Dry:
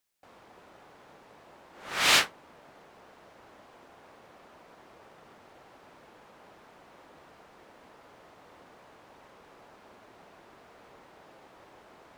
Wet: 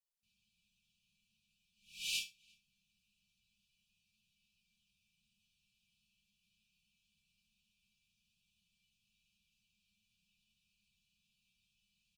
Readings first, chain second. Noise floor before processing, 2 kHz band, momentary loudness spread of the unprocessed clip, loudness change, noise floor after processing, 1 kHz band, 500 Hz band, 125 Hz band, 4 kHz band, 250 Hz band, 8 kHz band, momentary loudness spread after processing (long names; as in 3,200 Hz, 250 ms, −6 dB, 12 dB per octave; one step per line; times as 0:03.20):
−56 dBFS, −20.0 dB, 14 LU, −15.5 dB, −82 dBFS, below −40 dB, below −40 dB, −23.0 dB, −14.5 dB, −29.0 dB, −14.0 dB, 15 LU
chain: brick-wall band-stop 220–2,300 Hz
resonators tuned to a chord B3 minor, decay 0.23 s
slap from a distant wall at 60 metres, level −28 dB
level +2 dB